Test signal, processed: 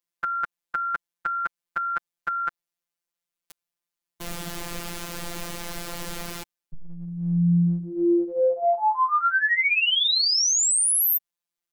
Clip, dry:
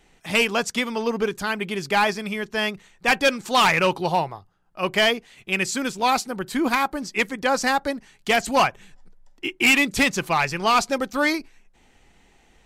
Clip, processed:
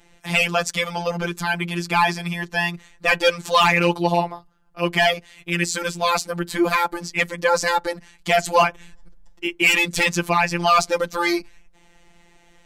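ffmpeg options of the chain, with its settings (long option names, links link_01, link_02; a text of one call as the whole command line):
ffmpeg -i in.wav -af "afftfilt=real='hypot(re,im)*cos(PI*b)':imag='0':win_size=1024:overlap=0.75,acontrast=53" out.wav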